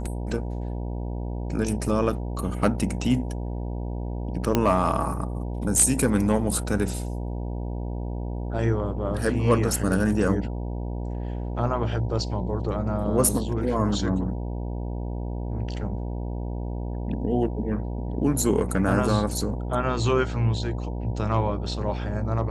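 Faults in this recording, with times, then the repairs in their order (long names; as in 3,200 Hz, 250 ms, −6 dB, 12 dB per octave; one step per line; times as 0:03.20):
mains buzz 60 Hz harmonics 16 −30 dBFS
0:04.55: click −7 dBFS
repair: click removal
hum removal 60 Hz, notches 16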